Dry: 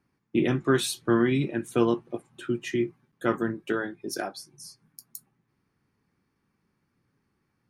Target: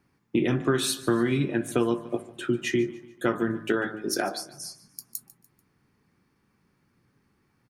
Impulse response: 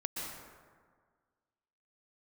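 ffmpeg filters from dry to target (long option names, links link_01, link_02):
-filter_complex "[0:a]bandreject=frequency=53.56:width_type=h:width=4,bandreject=frequency=107.12:width_type=h:width=4,bandreject=frequency=160.68:width_type=h:width=4,bandreject=frequency=214.24:width_type=h:width=4,bandreject=frequency=267.8:width_type=h:width=4,bandreject=frequency=321.36:width_type=h:width=4,bandreject=frequency=374.92:width_type=h:width=4,bandreject=frequency=428.48:width_type=h:width=4,bandreject=frequency=482.04:width_type=h:width=4,bandreject=frequency=535.6:width_type=h:width=4,bandreject=frequency=589.16:width_type=h:width=4,bandreject=frequency=642.72:width_type=h:width=4,bandreject=frequency=696.28:width_type=h:width=4,bandreject=frequency=749.84:width_type=h:width=4,bandreject=frequency=803.4:width_type=h:width=4,bandreject=frequency=856.96:width_type=h:width=4,bandreject=frequency=910.52:width_type=h:width=4,bandreject=frequency=964.08:width_type=h:width=4,bandreject=frequency=1017.64:width_type=h:width=4,bandreject=frequency=1071.2:width_type=h:width=4,bandreject=frequency=1124.76:width_type=h:width=4,bandreject=frequency=1178.32:width_type=h:width=4,bandreject=frequency=1231.88:width_type=h:width=4,bandreject=frequency=1285.44:width_type=h:width=4,bandreject=frequency=1339:width_type=h:width=4,bandreject=frequency=1392.56:width_type=h:width=4,bandreject=frequency=1446.12:width_type=h:width=4,bandreject=frequency=1499.68:width_type=h:width=4,bandreject=frequency=1553.24:width_type=h:width=4,bandreject=frequency=1606.8:width_type=h:width=4,bandreject=frequency=1660.36:width_type=h:width=4,bandreject=frequency=1713.92:width_type=h:width=4,acompressor=threshold=-27dB:ratio=4,asplit=2[link_01][link_02];[link_02]aecho=0:1:146|292|438:0.119|0.0499|0.021[link_03];[link_01][link_03]amix=inputs=2:normalize=0,volume=6dB"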